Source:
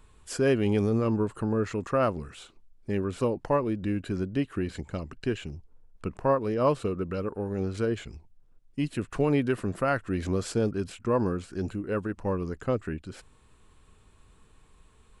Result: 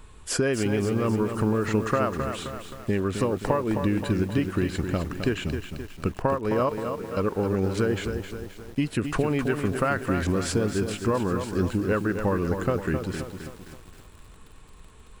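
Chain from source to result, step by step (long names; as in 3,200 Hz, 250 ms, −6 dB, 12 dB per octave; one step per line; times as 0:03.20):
dynamic equaliser 1,600 Hz, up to +5 dB, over −41 dBFS, Q 0.9
downward compressor 20 to 1, threshold −29 dBFS, peak gain reduction 13.5 dB
0:06.69–0:07.17: tuned comb filter 230 Hz, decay 0.21 s, harmonics all, mix 90%
feedback echo at a low word length 263 ms, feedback 55%, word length 9 bits, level −7 dB
level +8.5 dB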